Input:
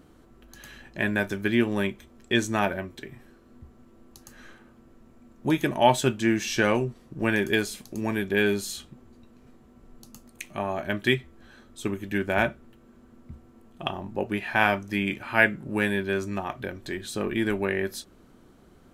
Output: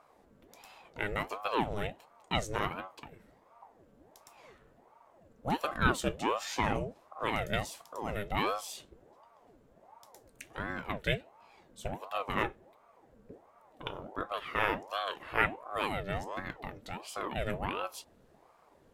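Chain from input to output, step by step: ring modulator with a swept carrier 570 Hz, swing 65%, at 1.4 Hz; gain -5.5 dB

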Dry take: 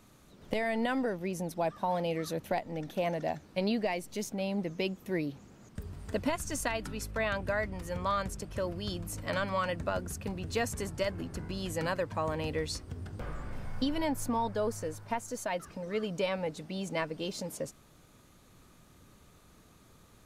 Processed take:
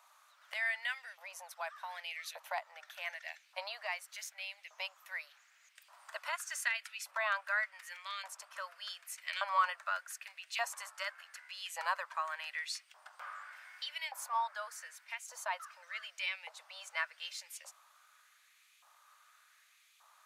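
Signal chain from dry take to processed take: LFO high-pass saw up 0.85 Hz 890–2600 Hz; elliptic high-pass 590 Hz, stop band 50 dB; gain -3 dB

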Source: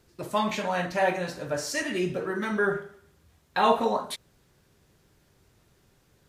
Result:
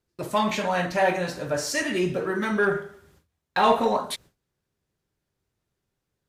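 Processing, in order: gate with hold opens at -50 dBFS; in parallel at -5 dB: soft clip -22.5 dBFS, distortion -11 dB

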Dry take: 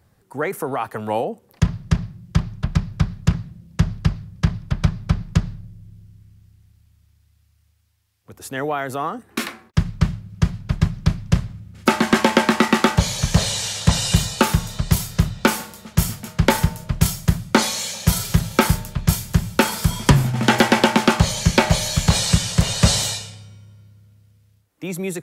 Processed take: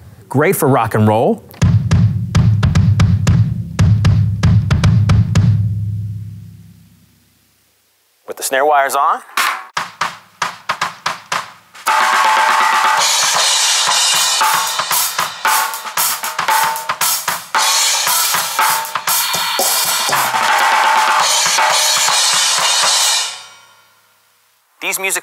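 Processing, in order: spectral repair 19.22–20.1, 820–4500 Hz before; high-pass sweep 95 Hz -> 1000 Hz, 5.91–9.17; maximiser +19 dB; gain -2.5 dB

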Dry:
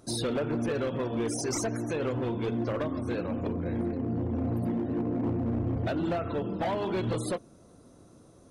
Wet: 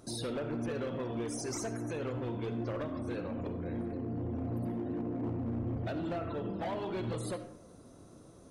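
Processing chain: limiter -31.5 dBFS, peak gain reduction 7 dB; on a send: reverb RT60 0.70 s, pre-delay 25 ms, DRR 10 dB

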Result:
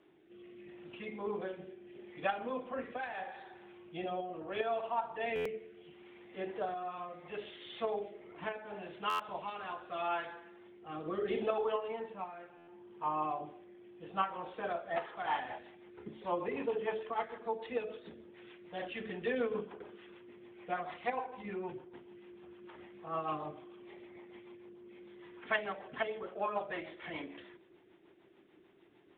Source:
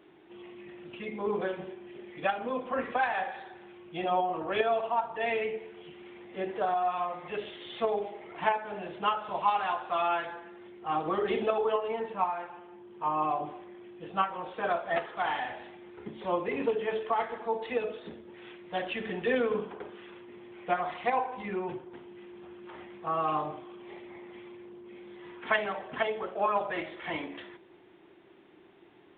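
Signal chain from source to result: 14.74–17.03 dynamic EQ 910 Hz, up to +6 dB, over -45 dBFS, Q 1.5; rotary speaker horn 0.75 Hz, later 6.7 Hz, at 14.7; stuck buffer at 5.35/9.09/12.57, samples 512, times 8; gain -4.5 dB

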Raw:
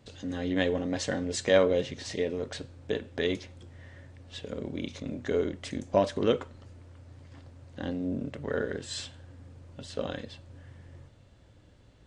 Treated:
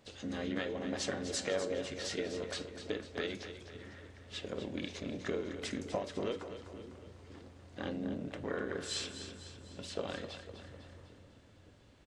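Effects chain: low shelf 270 Hz -8.5 dB; compressor 12:1, threshold -32 dBFS, peak gain reduction 14.5 dB; harmoniser -5 st -8 dB, +4 st -16 dB; flange 0.26 Hz, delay 9.5 ms, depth 1.4 ms, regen +81%; split-band echo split 350 Hz, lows 0.564 s, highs 0.25 s, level -10 dB; gain +3.5 dB

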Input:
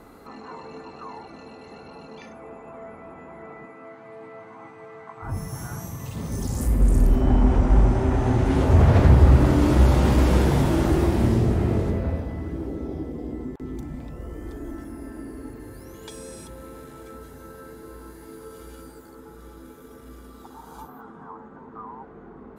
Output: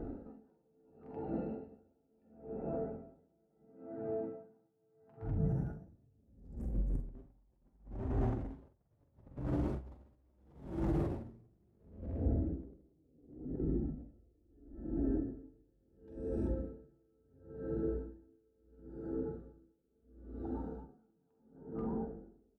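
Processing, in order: Wiener smoothing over 41 samples; high shelf 2000 Hz -11.5 dB; de-hum 124.8 Hz, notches 38; negative-ratio compressor -25 dBFS, ratio -0.5; limiter -28 dBFS, peak gain reduction 17.5 dB; flange 0.49 Hz, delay 2.5 ms, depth 5.4 ms, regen -47%; early reflections 45 ms -9 dB, 67 ms -15 dB; reverb RT60 1.6 s, pre-delay 3 ms, DRR 15 dB; dB-linear tremolo 0.73 Hz, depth 39 dB; gain +6 dB

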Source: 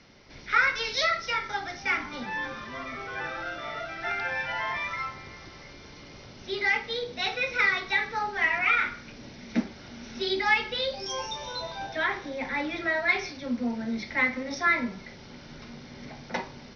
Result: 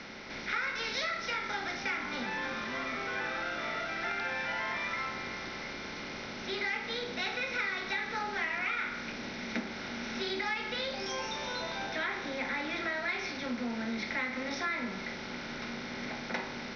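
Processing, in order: per-bin compression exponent 0.6; compressor 4:1, threshold -24 dBFS, peak gain reduction 8 dB; gain -7 dB

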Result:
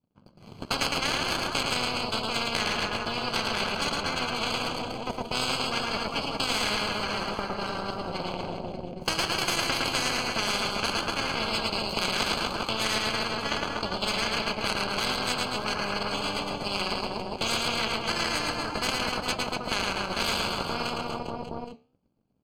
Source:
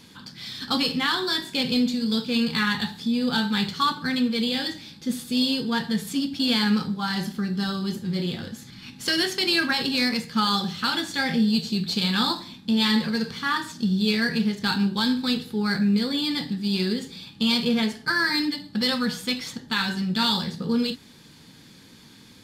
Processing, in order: HPF 48 Hz; low shelf 160 Hz +8.5 dB; in parallel at 0 dB: compressor, threshold -27 dBFS, peak gain reduction 12 dB; on the sum: power-law curve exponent 3; running mean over 24 samples; on a send: reverse bouncing-ball echo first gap 0.11 s, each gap 1.2×, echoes 5; on the sum: flange 0.62 Hz, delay 6.8 ms, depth 8.1 ms, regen -81%; spectral compressor 10:1; gain +6.5 dB

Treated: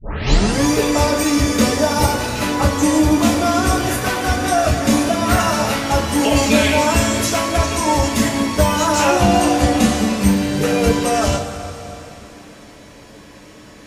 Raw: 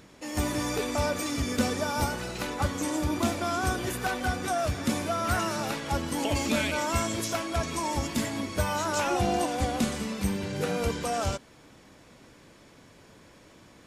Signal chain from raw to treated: tape start at the beginning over 0.63 s; two-slope reverb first 0.22 s, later 3.4 s, from -19 dB, DRR -5.5 dB; gain +6 dB

